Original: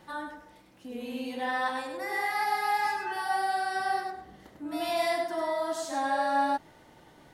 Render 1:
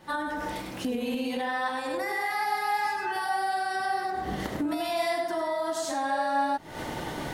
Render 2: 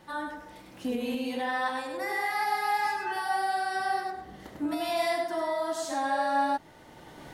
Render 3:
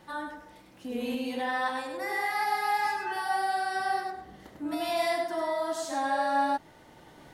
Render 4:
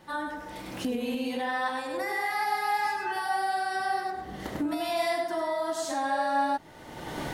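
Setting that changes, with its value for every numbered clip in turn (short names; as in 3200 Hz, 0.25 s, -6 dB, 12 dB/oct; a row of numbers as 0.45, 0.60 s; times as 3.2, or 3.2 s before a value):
recorder AGC, rising by: 88, 13, 5.2, 34 dB/s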